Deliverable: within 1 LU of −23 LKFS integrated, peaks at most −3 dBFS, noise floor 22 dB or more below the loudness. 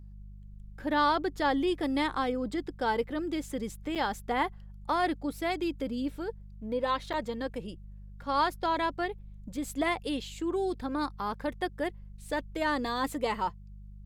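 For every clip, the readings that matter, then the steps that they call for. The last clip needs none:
number of dropouts 2; longest dropout 6.7 ms; mains hum 50 Hz; hum harmonics up to 200 Hz; level of the hum −44 dBFS; integrated loudness −31.5 LKFS; sample peak −14.5 dBFS; target loudness −23.0 LKFS
→ repair the gap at 0:03.95/0:07.13, 6.7 ms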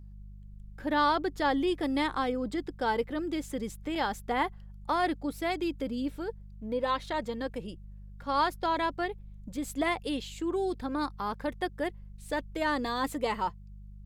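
number of dropouts 0; mains hum 50 Hz; hum harmonics up to 200 Hz; level of the hum −44 dBFS
→ hum removal 50 Hz, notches 4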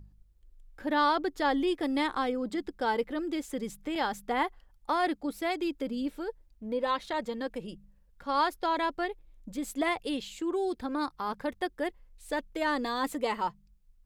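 mains hum none found; integrated loudness −32.0 LKFS; sample peak −15.0 dBFS; target loudness −23.0 LKFS
→ level +9 dB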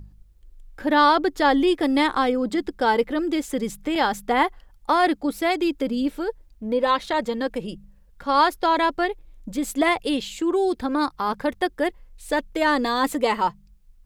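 integrated loudness −23.0 LKFS; sample peak −6.0 dBFS; background noise floor −54 dBFS

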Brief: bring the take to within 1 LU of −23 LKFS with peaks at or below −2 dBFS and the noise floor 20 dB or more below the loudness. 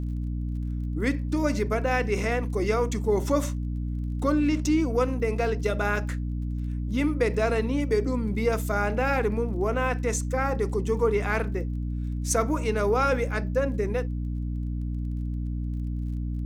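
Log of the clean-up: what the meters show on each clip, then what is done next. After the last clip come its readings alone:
crackle rate 26 per second; mains hum 60 Hz; hum harmonics up to 300 Hz; level of the hum −27 dBFS; integrated loudness −27.0 LKFS; sample peak −10.5 dBFS; target loudness −23.0 LKFS
→ click removal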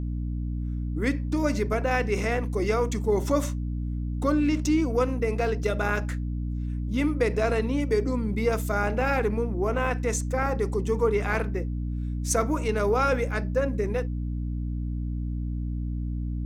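crackle rate 1.6 per second; mains hum 60 Hz; hum harmonics up to 300 Hz; level of the hum −27 dBFS
→ hum removal 60 Hz, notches 5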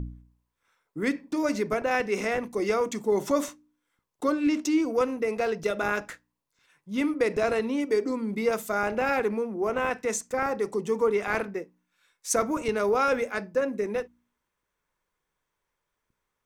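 mains hum none found; integrated loudness −27.5 LKFS; sample peak −11.0 dBFS; target loudness −23.0 LKFS
→ level +4.5 dB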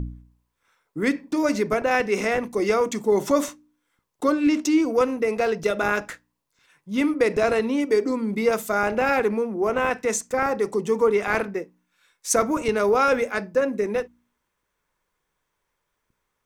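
integrated loudness −23.0 LKFS; sample peak −6.5 dBFS; background noise floor −78 dBFS

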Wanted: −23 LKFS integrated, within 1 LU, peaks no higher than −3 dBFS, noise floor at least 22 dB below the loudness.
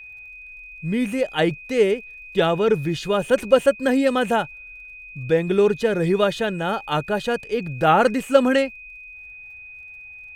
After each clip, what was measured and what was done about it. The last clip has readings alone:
crackle rate 38 per second; interfering tone 2,500 Hz; level of the tone −38 dBFS; integrated loudness −21.0 LKFS; sample peak −1.5 dBFS; target loudness −23.0 LKFS
→ click removal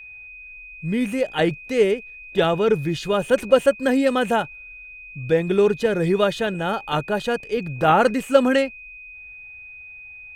crackle rate 0.97 per second; interfering tone 2,500 Hz; level of the tone −38 dBFS
→ notch filter 2,500 Hz, Q 30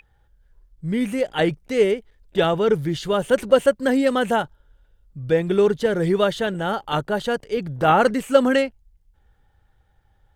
interfering tone none found; integrated loudness −21.0 LKFS; sample peak −2.0 dBFS; target loudness −23.0 LKFS
→ level −2 dB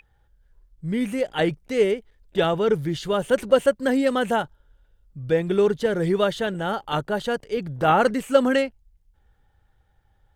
integrated loudness −23.0 LKFS; sample peak −4.0 dBFS; background noise floor −64 dBFS

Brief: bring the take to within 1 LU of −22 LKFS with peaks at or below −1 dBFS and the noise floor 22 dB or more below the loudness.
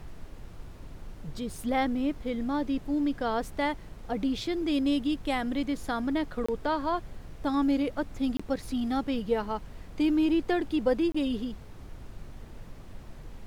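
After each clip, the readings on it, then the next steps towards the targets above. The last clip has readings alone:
number of dropouts 3; longest dropout 25 ms; background noise floor −46 dBFS; target noise floor −52 dBFS; integrated loudness −29.5 LKFS; sample peak −14.5 dBFS; target loudness −22.0 LKFS
→ repair the gap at 0:06.46/0:08.37/0:11.12, 25 ms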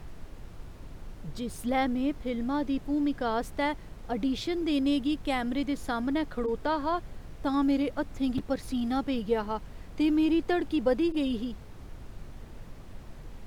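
number of dropouts 0; background noise floor −46 dBFS; target noise floor −52 dBFS
→ noise reduction from a noise print 6 dB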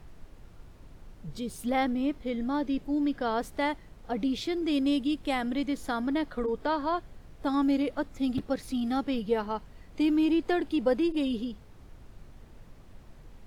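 background noise floor −52 dBFS; integrated loudness −29.5 LKFS; sample peak −14.5 dBFS; target loudness −22.0 LKFS
→ level +7.5 dB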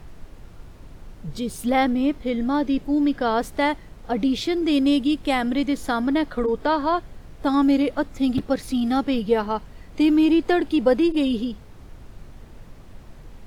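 integrated loudness −22.0 LKFS; sample peak −7.0 dBFS; background noise floor −44 dBFS

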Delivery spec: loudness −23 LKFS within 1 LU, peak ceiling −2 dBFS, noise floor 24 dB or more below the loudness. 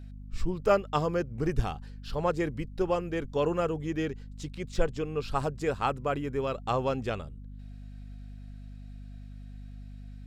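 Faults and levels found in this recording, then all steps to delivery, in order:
mains hum 50 Hz; hum harmonics up to 250 Hz; level of the hum −41 dBFS; integrated loudness −31.0 LKFS; sample peak −12.5 dBFS; target loudness −23.0 LKFS
→ mains-hum notches 50/100/150/200/250 Hz
level +8 dB

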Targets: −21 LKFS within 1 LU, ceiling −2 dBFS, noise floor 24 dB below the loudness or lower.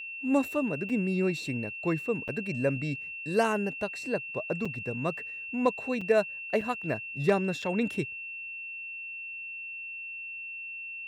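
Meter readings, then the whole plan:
number of dropouts 6; longest dropout 5.0 ms; interfering tone 2,700 Hz; level of the tone −37 dBFS; integrated loudness −31.0 LKFS; sample peak −13.5 dBFS; target loudness −21.0 LKFS
→ repair the gap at 0:00.89/0:02.28/0:04.65/0:06.01/0:06.61/0:07.62, 5 ms
notch filter 2,700 Hz, Q 30
level +10 dB

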